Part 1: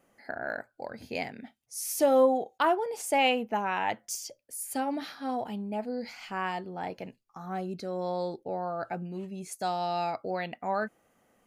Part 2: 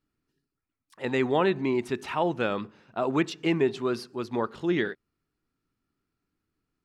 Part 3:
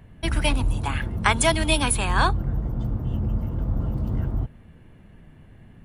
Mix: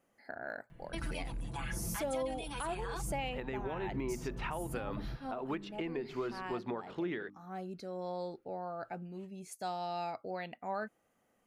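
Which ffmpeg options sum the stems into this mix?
ffmpeg -i stem1.wav -i stem2.wav -i stem3.wav -filter_complex "[0:a]volume=-7.5dB[link_01];[1:a]bass=frequency=250:gain=-3,treble=frequency=4000:gain=-13,bandreject=frequency=50:width_type=h:width=6,bandreject=frequency=100:width_type=h:width=6,bandreject=frequency=150:width_type=h:width=6,bandreject=frequency=200:width_type=h:width=6,bandreject=frequency=250:width_type=h:width=6,bandreject=frequency=300:width_type=h:width=6,acompressor=threshold=-30dB:ratio=6,adelay=2350,volume=2.5dB[link_02];[2:a]aecho=1:1:6:0.94,acompressor=threshold=-26dB:ratio=2,alimiter=limit=-20.5dB:level=0:latency=1:release=12,adelay=700,volume=-9.5dB[link_03];[link_01][link_02][link_03]amix=inputs=3:normalize=0,alimiter=level_in=3.5dB:limit=-24dB:level=0:latency=1:release=483,volume=-3.5dB" out.wav

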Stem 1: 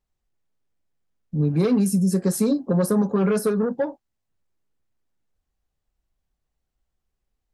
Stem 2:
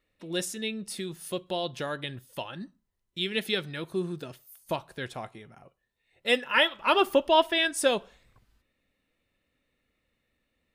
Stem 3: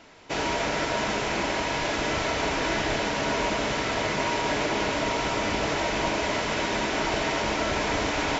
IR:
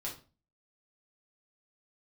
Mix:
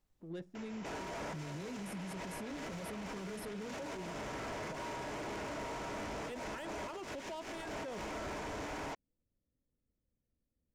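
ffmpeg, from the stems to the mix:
-filter_complex "[0:a]alimiter=limit=-22dB:level=0:latency=1:release=119,volume=1dB[link_01];[1:a]lowshelf=frequency=290:gain=8,adynamicsmooth=sensitivity=1.5:basefreq=690,volume=-11.5dB,asplit=2[link_02][link_03];[2:a]equalizer=frequency=4000:width=2.4:gain=-7.5,asoftclip=type=tanh:threshold=-31dB,adelay=550,volume=2.5dB[link_04];[link_03]apad=whole_len=394671[link_05];[link_04][link_05]sidechaincompress=threshold=-42dB:ratio=8:attack=28:release=216[link_06];[link_01][link_02][link_06]amix=inputs=3:normalize=0,acrossover=split=1700|4900[link_07][link_08][link_09];[link_07]acompressor=threshold=-35dB:ratio=4[link_10];[link_08]acompressor=threshold=-49dB:ratio=4[link_11];[link_09]acompressor=threshold=-51dB:ratio=4[link_12];[link_10][link_11][link_12]amix=inputs=3:normalize=0,alimiter=level_in=12dB:limit=-24dB:level=0:latency=1:release=12,volume=-12dB"

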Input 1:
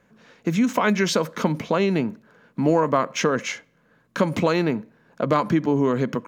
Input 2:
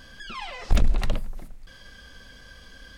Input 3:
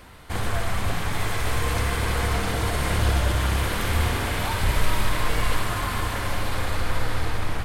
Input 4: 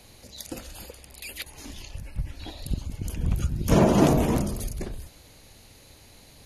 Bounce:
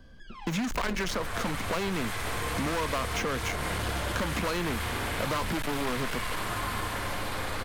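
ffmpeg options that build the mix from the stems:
ffmpeg -i stem1.wav -i stem2.wav -i stem3.wav -filter_complex "[0:a]aeval=exprs='sgn(val(0))*max(abs(val(0))-0.0237,0)':channel_layout=same,dynaudnorm=framelen=160:gausssize=5:maxgain=6dB,volume=-0.5dB[link_01];[1:a]tiltshelf=frequency=910:gain=7.5,volume=-9dB[link_02];[2:a]adelay=800,volume=-3.5dB[link_03];[link_01][link_02][link_03]amix=inputs=3:normalize=0,asoftclip=type=hard:threshold=-18dB,acrossover=split=140|1000|2000[link_04][link_05][link_06][link_07];[link_04]acompressor=threshold=-36dB:ratio=4[link_08];[link_05]acompressor=threshold=-33dB:ratio=4[link_09];[link_06]acompressor=threshold=-34dB:ratio=4[link_10];[link_07]acompressor=threshold=-36dB:ratio=4[link_11];[link_08][link_09][link_10][link_11]amix=inputs=4:normalize=0" out.wav

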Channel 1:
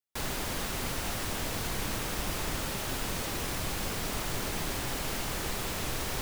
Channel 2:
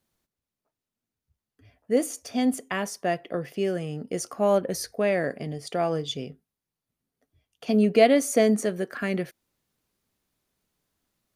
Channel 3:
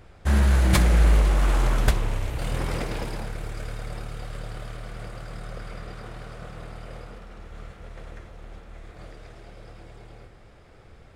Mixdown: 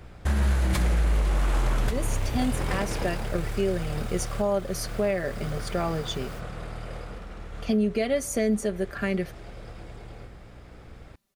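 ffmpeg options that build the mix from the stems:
ffmpeg -i stem1.wav -i stem2.wav -i stem3.wav -filter_complex "[0:a]adelay=1200,volume=-15dB[link_01];[1:a]aecho=1:1:5.1:0.58,volume=-0.5dB,asplit=2[link_02][link_03];[2:a]aeval=exprs='val(0)+0.00282*(sin(2*PI*60*n/s)+sin(2*PI*2*60*n/s)/2+sin(2*PI*3*60*n/s)/3+sin(2*PI*4*60*n/s)/4+sin(2*PI*5*60*n/s)/5)':channel_layout=same,volume=2.5dB[link_04];[link_03]apad=whole_len=326823[link_05];[link_01][link_05]sidechaingate=range=-33dB:threshold=-46dB:ratio=16:detection=peak[link_06];[link_06][link_02][link_04]amix=inputs=3:normalize=0,alimiter=limit=-15.5dB:level=0:latency=1:release=376" out.wav

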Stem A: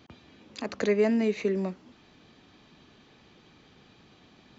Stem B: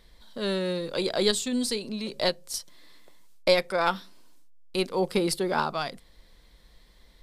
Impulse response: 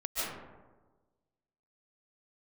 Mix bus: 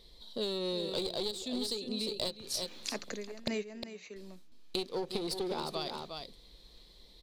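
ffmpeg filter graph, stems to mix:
-filter_complex "[0:a]acrossover=split=420[link_01][link_02];[link_01]aeval=exprs='val(0)*(1-0.5/2+0.5/2*cos(2*PI*1.1*n/s))':channel_layout=same[link_03];[link_02]aeval=exprs='val(0)*(1-0.5/2-0.5/2*cos(2*PI*1.1*n/s))':channel_layout=same[link_04];[link_03][link_04]amix=inputs=2:normalize=0,crystalizer=i=4:c=0,adelay=2300,volume=1dB,asplit=2[link_05][link_06];[link_06]volume=-19.5dB[link_07];[1:a]equalizer=frequency=400:width_type=o:width=0.67:gain=7,equalizer=frequency=1600:width_type=o:width=0.67:gain=-11,equalizer=frequency=4000:width_type=o:width=0.67:gain=11,aeval=exprs='clip(val(0),-1,0.0708)':channel_layout=same,volume=-3.5dB,asplit=3[link_08][link_09][link_10];[link_08]atrim=end=3.48,asetpts=PTS-STARTPTS,afade=type=out:start_time=3.476:duration=0.004:curve=hsin[link_11];[link_09]atrim=start=3.48:end=4.16,asetpts=PTS-STARTPTS,volume=0[link_12];[link_10]atrim=start=4.16,asetpts=PTS-STARTPTS,afade=type=in:duration=0.004:curve=hsin[link_13];[link_11][link_12][link_13]concat=n=3:v=0:a=1,asplit=3[link_14][link_15][link_16];[link_15]volume=-10.5dB[link_17];[link_16]apad=whole_len=303531[link_18];[link_05][link_18]sidechaingate=range=-31dB:threshold=-50dB:ratio=16:detection=peak[link_19];[link_07][link_17]amix=inputs=2:normalize=0,aecho=0:1:356:1[link_20];[link_19][link_14][link_20]amix=inputs=3:normalize=0,acompressor=threshold=-31dB:ratio=16"

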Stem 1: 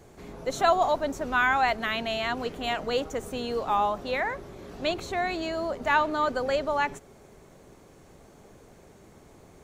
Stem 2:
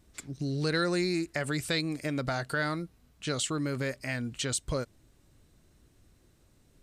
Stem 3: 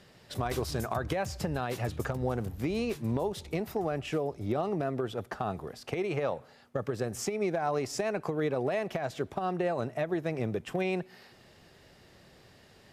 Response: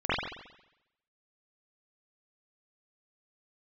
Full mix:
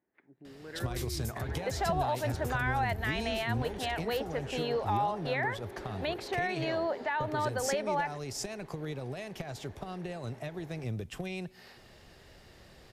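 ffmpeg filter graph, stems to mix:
-filter_complex "[0:a]adelay=1200,volume=-1dB[link_01];[1:a]lowpass=frequency=2100:width=0.5412,lowpass=frequency=2100:width=1.3066,volume=-15.5dB[link_02];[2:a]acrossover=split=190|3000[link_03][link_04][link_05];[link_04]acompressor=threshold=-42dB:ratio=6[link_06];[link_03][link_06][link_05]amix=inputs=3:normalize=0,adelay=450,volume=1.5dB[link_07];[link_01][link_02]amix=inputs=2:normalize=0,highpass=250,equalizer=frequency=380:width_type=q:width=4:gain=4,equalizer=frequency=850:width_type=q:width=4:gain=6,equalizer=frequency=1200:width_type=q:width=4:gain=-5,equalizer=frequency=1800:width_type=q:width=4:gain=7,lowpass=frequency=4700:width=0.5412,lowpass=frequency=4700:width=1.3066,alimiter=limit=-23dB:level=0:latency=1:release=305,volume=0dB[link_08];[link_07][link_08]amix=inputs=2:normalize=0,asubboost=boost=2.5:cutoff=78"

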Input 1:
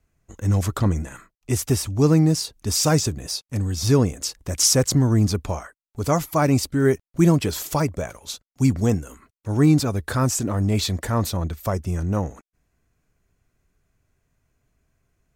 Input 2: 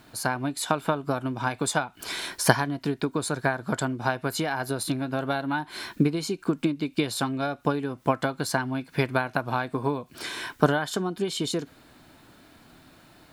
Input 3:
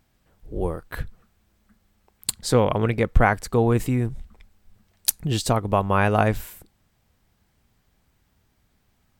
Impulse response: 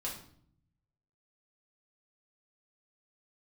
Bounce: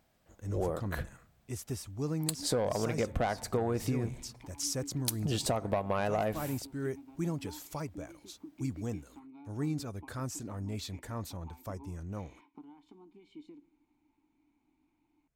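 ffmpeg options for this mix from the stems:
-filter_complex "[0:a]volume=-17dB[link_01];[1:a]acompressor=threshold=-26dB:ratio=6,asplit=3[link_02][link_03][link_04];[link_02]bandpass=frequency=300:width_type=q:width=8,volume=0dB[link_05];[link_03]bandpass=frequency=870:width_type=q:width=8,volume=-6dB[link_06];[link_04]bandpass=frequency=2240:width_type=q:width=8,volume=-9dB[link_07];[link_05][link_06][link_07]amix=inputs=3:normalize=0,adelay=1950,volume=-12.5dB,asplit=2[link_08][link_09];[link_09]volume=-16dB[link_10];[2:a]highpass=frequency=100:poles=1,equalizer=frequency=630:width=2.2:gain=7.5,asoftclip=type=tanh:threshold=-11dB,volume=-5dB,asplit=2[link_11][link_12];[link_12]volume=-18dB[link_13];[3:a]atrim=start_sample=2205[link_14];[link_10][link_13]amix=inputs=2:normalize=0[link_15];[link_15][link_14]afir=irnorm=-1:irlink=0[link_16];[link_01][link_08][link_11][link_16]amix=inputs=4:normalize=0,acompressor=threshold=-27dB:ratio=10"

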